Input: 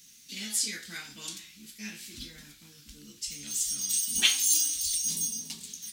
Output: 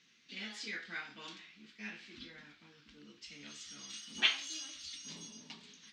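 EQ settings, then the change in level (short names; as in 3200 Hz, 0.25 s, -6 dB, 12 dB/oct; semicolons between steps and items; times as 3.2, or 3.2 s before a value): band-pass 1100 Hz, Q 0.53; air absorption 180 m; +2.5 dB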